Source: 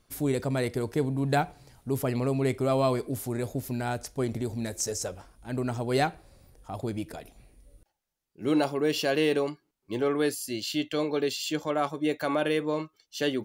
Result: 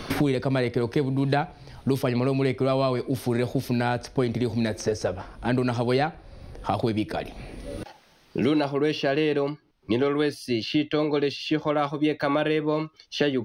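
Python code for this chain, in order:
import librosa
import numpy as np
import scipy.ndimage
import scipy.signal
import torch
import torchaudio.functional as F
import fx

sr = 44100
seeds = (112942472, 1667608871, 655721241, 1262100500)

y = scipy.signal.savgol_filter(x, 15, 4, mode='constant')
y = fx.band_squash(y, sr, depth_pct=100)
y = F.gain(torch.from_numpy(y), 3.0).numpy()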